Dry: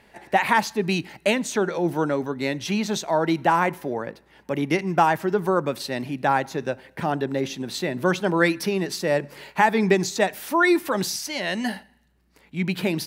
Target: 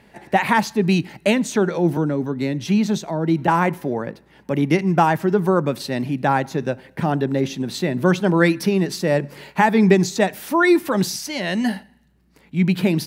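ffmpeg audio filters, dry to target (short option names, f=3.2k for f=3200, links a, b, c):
-filter_complex "[0:a]equalizer=f=160:w=0.63:g=7.5,asettb=1/sr,asplit=3[a][b][c];[a]atrim=end=1.974[d];[b]atrim=start=1.97:end=3.48,asetpts=PTS-STARTPTS,afade=t=in:d=0.004:c=qsin,afade=t=out:st=1.506:d=0.004:c=qsin,acrossover=split=410[e][f];[f]acompressor=threshold=-31dB:ratio=3[g];[e][g]amix=inputs=2:normalize=0[h];[c]atrim=start=3.476[i];[d][h]acrossfade=d=0.004:c1=hsin:c2=qsin[j];[j][i]acrossfade=d=0.004:c1=qsin:c2=hsin,volume=1dB"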